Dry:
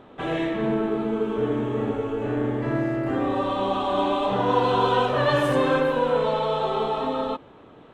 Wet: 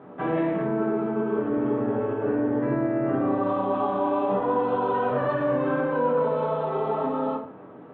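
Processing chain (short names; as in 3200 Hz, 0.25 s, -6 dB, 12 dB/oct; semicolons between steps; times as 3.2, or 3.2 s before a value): Chebyshev band-pass 140–1500 Hz, order 2; limiter -22 dBFS, peak gain reduction 11.5 dB; shoebox room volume 42 m³, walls mixed, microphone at 0.66 m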